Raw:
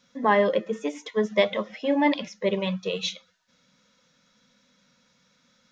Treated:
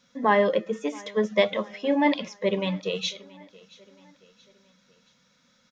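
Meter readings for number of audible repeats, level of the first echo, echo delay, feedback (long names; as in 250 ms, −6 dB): 2, −23.0 dB, 676 ms, 47%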